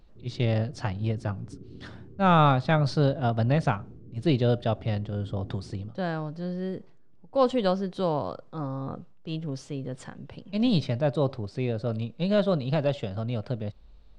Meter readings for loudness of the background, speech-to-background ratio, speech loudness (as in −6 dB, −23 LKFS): −47.0 LKFS, 19.5 dB, −27.5 LKFS